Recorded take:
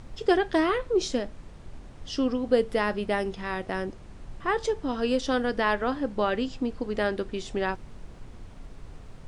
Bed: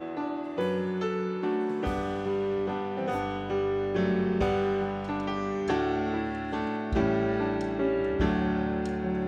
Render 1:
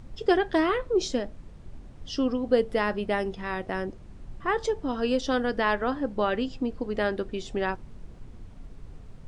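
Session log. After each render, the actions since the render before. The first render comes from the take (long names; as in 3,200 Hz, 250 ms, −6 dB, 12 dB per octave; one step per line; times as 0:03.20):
broadband denoise 6 dB, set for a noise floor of −46 dBFS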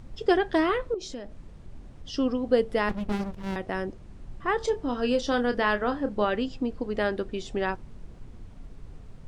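0:00.94–0:02.14: downward compressor 3 to 1, threshold −36 dBFS
0:02.89–0:03.56: windowed peak hold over 65 samples
0:04.57–0:06.25: double-tracking delay 29 ms −10 dB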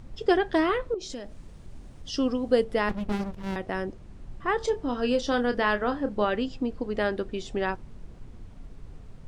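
0:01.09–0:02.63: high-shelf EQ 4,000 Hz → 6,400 Hz +9 dB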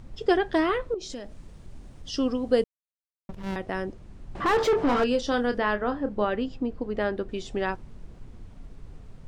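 0:02.64–0:03.29: silence
0:04.35–0:05.04: mid-hump overdrive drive 30 dB, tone 1,300 Hz, clips at −14 dBFS
0:05.58–0:07.29: high-shelf EQ 3,000 Hz −8 dB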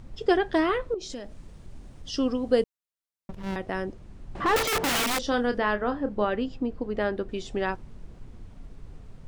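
0:04.56–0:05.27: wrap-around overflow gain 21.5 dB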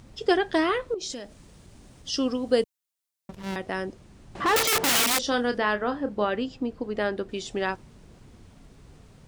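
high-pass filter 100 Hz 6 dB per octave
high-shelf EQ 3,200 Hz +8 dB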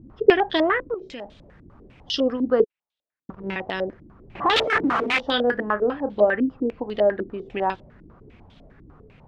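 low-pass on a step sequencer 10 Hz 300–3,500 Hz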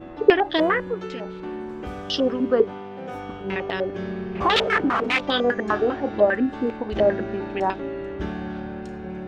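mix in bed −4 dB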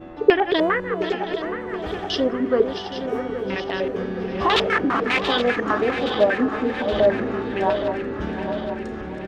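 feedback delay that plays each chunk backwards 410 ms, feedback 76%, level −9 dB
repeating echo 721 ms, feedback 43%, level −14 dB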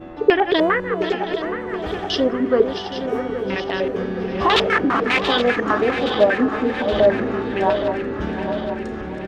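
level +2.5 dB
brickwall limiter −2 dBFS, peak gain reduction 3 dB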